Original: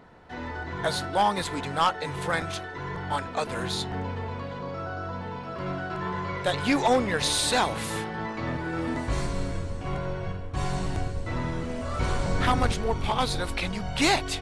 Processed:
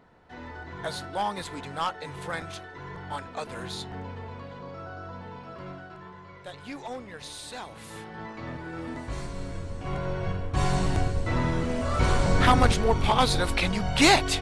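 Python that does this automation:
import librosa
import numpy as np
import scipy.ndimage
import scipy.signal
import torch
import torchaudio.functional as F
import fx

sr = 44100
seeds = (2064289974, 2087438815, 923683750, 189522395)

y = fx.gain(x, sr, db=fx.line((5.51, -6.0), (6.17, -15.5), (7.63, -15.5), (8.2, -6.5), (9.33, -6.5), (10.42, 4.0)))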